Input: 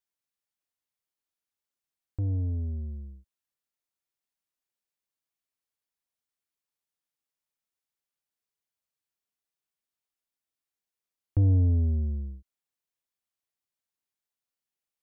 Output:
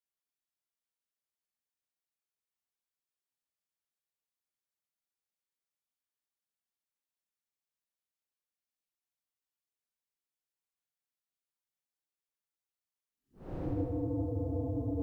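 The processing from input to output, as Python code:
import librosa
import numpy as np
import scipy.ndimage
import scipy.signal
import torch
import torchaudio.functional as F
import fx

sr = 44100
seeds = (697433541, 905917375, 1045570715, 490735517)

y = fx.spec_clip(x, sr, under_db=21)
y = fx.paulstretch(y, sr, seeds[0], factor=11.0, window_s=0.05, from_s=0.95)
y = fx.echo_feedback(y, sr, ms=156, feedback_pct=42, wet_db=-5.5)
y = y * 10.0 ** (-7.0 / 20.0)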